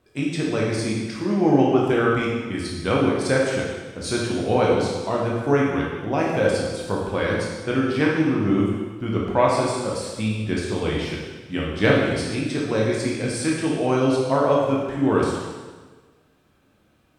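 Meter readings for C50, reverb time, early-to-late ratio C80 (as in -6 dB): 0.0 dB, 1.4 s, 3.0 dB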